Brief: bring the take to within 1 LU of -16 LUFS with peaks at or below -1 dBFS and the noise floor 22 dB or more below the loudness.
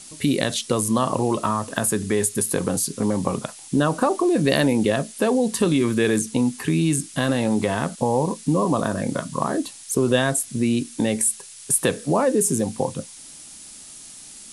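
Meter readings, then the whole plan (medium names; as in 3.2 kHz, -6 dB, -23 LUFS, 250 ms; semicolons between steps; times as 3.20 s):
noise floor -42 dBFS; noise floor target -44 dBFS; loudness -22.0 LUFS; peak level -3.0 dBFS; loudness target -16.0 LUFS
-> noise print and reduce 6 dB; trim +6 dB; peak limiter -1 dBFS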